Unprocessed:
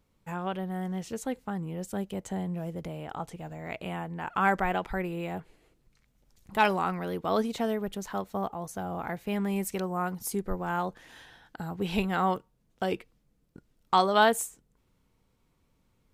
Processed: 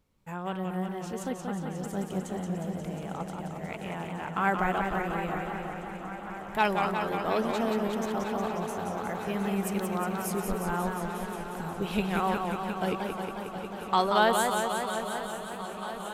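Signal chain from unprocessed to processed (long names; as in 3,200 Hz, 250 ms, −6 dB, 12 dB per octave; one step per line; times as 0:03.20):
feedback echo with a long and a short gap by turns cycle 948 ms, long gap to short 3 to 1, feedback 80%, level −15 dB
feedback echo with a swinging delay time 180 ms, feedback 75%, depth 124 cents, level −5 dB
level −2 dB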